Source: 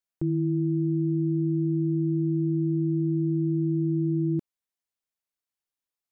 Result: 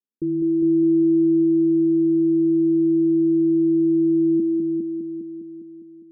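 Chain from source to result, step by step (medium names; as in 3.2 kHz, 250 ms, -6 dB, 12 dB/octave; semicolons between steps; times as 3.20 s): steep low-pass 500 Hz 96 dB/octave; resonant low shelf 170 Hz -9.5 dB, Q 3; multi-head delay 203 ms, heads first and second, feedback 55%, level -6 dB; trim +2 dB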